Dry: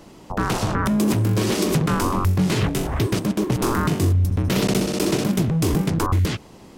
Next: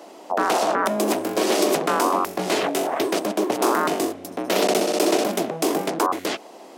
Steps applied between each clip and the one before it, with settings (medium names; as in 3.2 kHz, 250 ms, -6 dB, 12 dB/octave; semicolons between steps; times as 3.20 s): high-pass 290 Hz 24 dB/octave; peaking EQ 680 Hz +10 dB 0.6 oct; trim +1.5 dB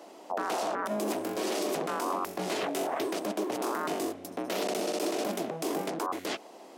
peak limiter -15.5 dBFS, peak gain reduction 9.5 dB; trim -6.5 dB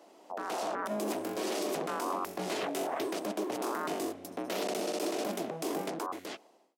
fade out at the end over 0.87 s; level rider gain up to 5.5 dB; trim -8 dB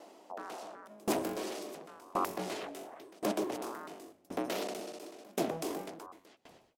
frequency-shifting echo 122 ms, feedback 42%, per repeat -65 Hz, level -18 dB; sawtooth tremolo in dB decaying 0.93 Hz, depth 28 dB; trim +5 dB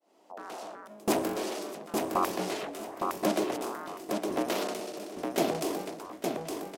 fade-in on the opening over 0.65 s; on a send: feedback delay 862 ms, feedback 21%, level -4 dB; on the sum: trim +4.5 dB